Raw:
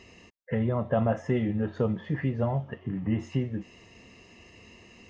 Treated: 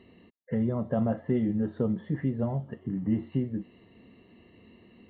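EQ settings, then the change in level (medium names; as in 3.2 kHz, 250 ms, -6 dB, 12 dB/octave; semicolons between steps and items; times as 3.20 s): brick-wall FIR low-pass 4.4 kHz; peaking EQ 240 Hz +10.5 dB 2.1 oct; band-stop 2.5 kHz, Q 6.3; -8.5 dB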